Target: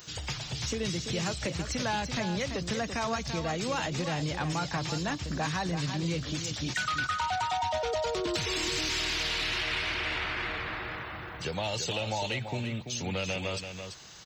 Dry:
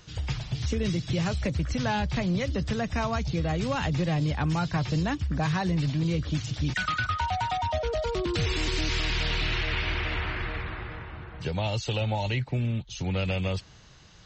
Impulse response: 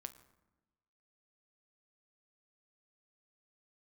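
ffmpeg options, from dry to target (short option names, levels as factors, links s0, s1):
-filter_complex "[0:a]aemphasis=mode=production:type=bsi,acompressor=threshold=0.0112:ratio=1.5,aeval=exprs='0.106*(cos(1*acos(clip(val(0)/0.106,-1,1)))-cos(1*PI/2))+0.0075*(cos(5*acos(clip(val(0)/0.106,-1,1)))-cos(5*PI/2))':c=same,aecho=1:1:337:0.398,asplit=2[s0][s1];[1:a]atrim=start_sample=2205,lowpass=2200[s2];[s1][s2]afir=irnorm=-1:irlink=0,volume=0.376[s3];[s0][s3]amix=inputs=2:normalize=0"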